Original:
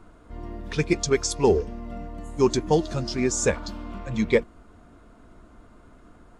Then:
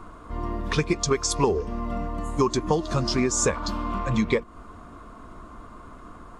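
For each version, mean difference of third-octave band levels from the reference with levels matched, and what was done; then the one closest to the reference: 5.0 dB: compression 12:1, threshold -25 dBFS, peak gain reduction 12 dB; peaking EQ 1.1 kHz +13.5 dB 0.29 oct; trim +6 dB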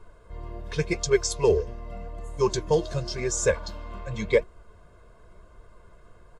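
2.0 dB: comb 1.9 ms, depth 98%; flange 0.89 Hz, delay 2.1 ms, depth 6.6 ms, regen +75%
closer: second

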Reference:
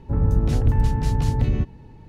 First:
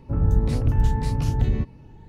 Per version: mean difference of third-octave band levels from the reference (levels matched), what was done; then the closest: 1.0 dB: drifting ripple filter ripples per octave 0.95, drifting +1.8 Hz, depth 6 dB; trim -2 dB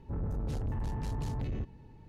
3.0 dB: saturation -22 dBFS, distortion -8 dB; trim -8.5 dB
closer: first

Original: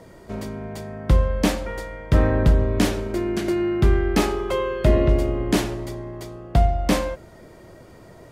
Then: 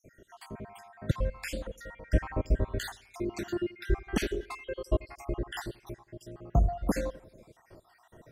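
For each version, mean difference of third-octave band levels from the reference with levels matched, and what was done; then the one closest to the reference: 7.5 dB: random holes in the spectrogram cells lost 64%; bucket-brigade echo 86 ms, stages 2048, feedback 48%, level -22 dB; trim -6.5 dB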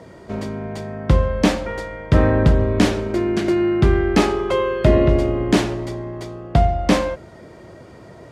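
1.5 dB: high-pass 62 Hz; distance through air 51 m; trim +4.5 dB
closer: second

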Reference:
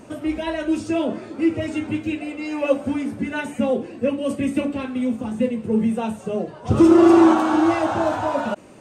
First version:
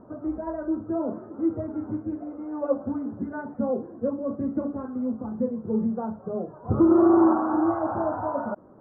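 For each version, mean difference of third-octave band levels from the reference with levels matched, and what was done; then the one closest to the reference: 5.5 dB: steep low-pass 1.4 kHz 48 dB/octave; trim -5.5 dB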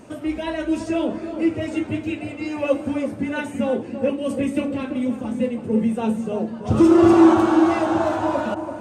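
2.0 dB: filtered feedback delay 335 ms, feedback 54%, low-pass 980 Hz, level -7 dB; trim -1 dB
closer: second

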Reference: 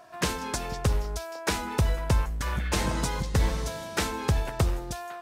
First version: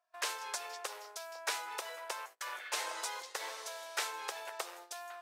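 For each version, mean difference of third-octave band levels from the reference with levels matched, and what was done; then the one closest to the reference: 11.5 dB: Bessel high-pass 780 Hz, order 8; gate -46 dBFS, range -23 dB; trim -5.5 dB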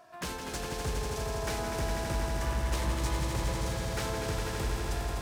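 7.0 dB: saturation -26 dBFS, distortion -9 dB; on a send: echo with a slow build-up 82 ms, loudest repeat 5, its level -6 dB; on the sum: trim -5 dB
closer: second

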